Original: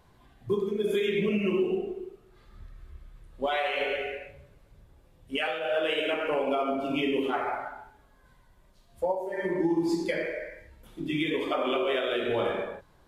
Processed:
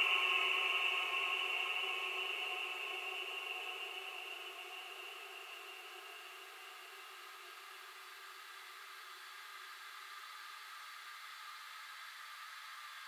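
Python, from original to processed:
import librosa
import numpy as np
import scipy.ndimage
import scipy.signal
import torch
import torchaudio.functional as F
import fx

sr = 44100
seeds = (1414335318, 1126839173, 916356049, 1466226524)

y = scipy.signal.sosfilt(scipy.signal.butter(4, 1200.0, 'highpass', fs=sr, output='sos'), x)
y = fx.paulstretch(y, sr, seeds[0], factor=17.0, window_s=1.0, from_s=1.78)
y = y * 10.0 ** (16.0 / 20.0)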